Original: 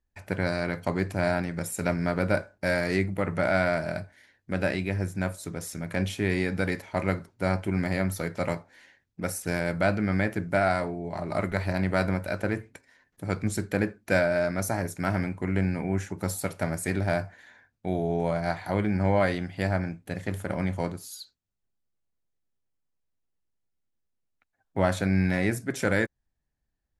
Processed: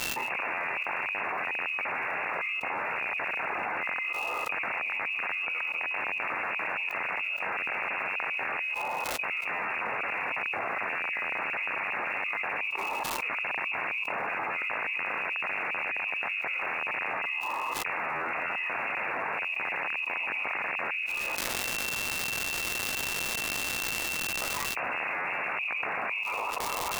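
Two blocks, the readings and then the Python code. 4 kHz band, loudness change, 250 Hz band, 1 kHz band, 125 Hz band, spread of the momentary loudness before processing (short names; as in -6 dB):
+5.5 dB, -1.5 dB, -19.0 dB, +2.0 dB, -24.0 dB, 9 LU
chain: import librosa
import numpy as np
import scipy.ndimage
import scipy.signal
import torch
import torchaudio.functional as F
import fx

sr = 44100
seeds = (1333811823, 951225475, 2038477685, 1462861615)

y = fx.echo_wet_highpass(x, sr, ms=203, feedback_pct=57, hz=1400.0, wet_db=-21.5)
y = fx.room_shoebox(y, sr, seeds[0], volume_m3=35.0, walls='mixed', distance_m=0.71)
y = fx.env_lowpass_down(y, sr, base_hz=710.0, full_db=-22.5)
y = (np.mod(10.0 ** (20.0 / 20.0) * y + 1.0, 2.0) - 1.0) / 10.0 ** (20.0 / 20.0)
y = fx.level_steps(y, sr, step_db=19)
y = fx.freq_invert(y, sr, carrier_hz=2700)
y = scipy.signal.sosfilt(scipy.signal.butter(2, 130.0, 'highpass', fs=sr, output='sos'), y)
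y = fx.peak_eq(y, sr, hz=810.0, db=10.5, octaves=1.8)
y = fx.dmg_crackle(y, sr, seeds[1], per_s=410.0, level_db=-53.0)
y = fx.env_flatten(y, sr, amount_pct=100)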